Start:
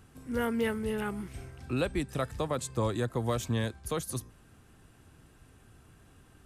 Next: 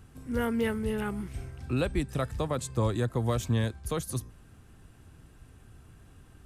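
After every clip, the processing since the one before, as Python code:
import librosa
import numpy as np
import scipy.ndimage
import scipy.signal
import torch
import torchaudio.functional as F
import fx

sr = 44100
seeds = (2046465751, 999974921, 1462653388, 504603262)

y = fx.low_shelf(x, sr, hz=140.0, db=7.5)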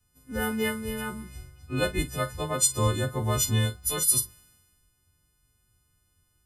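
y = fx.freq_snap(x, sr, grid_st=3)
y = fx.doubler(y, sr, ms=44.0, db=-12.5)
y = fx.band_widen(y, sr, depth_pct=70)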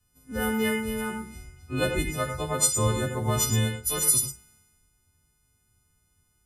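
y = fx.rev_gated(x, sr, seeds[0], gate_ms=130, shape='rising', drr_db=6.5)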